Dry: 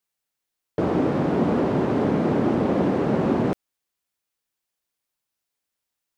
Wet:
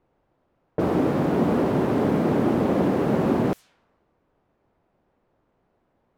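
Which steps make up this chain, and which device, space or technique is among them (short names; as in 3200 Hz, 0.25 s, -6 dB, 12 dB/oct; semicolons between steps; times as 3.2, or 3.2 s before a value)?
cassette deck with a dynamic noise filter (white noise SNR 30 dB; low-pass opened by the level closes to 610 Hz, open at -21 dBFS)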